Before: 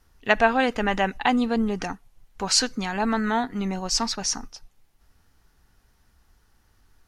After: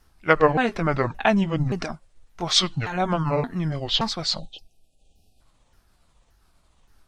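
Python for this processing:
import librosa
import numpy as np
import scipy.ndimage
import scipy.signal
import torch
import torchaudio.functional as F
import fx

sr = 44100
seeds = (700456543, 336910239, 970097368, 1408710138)

y = fx.pitch_ramps(x, sr, semitones=-9.0, every_ms=573)
y = fx.spec_erase(y, sr, start_s=4.39, length_s=1.02, low_hz=820.0, high_hz=2400.0)
y = y * 10.0 ** (2.0 / 20.0)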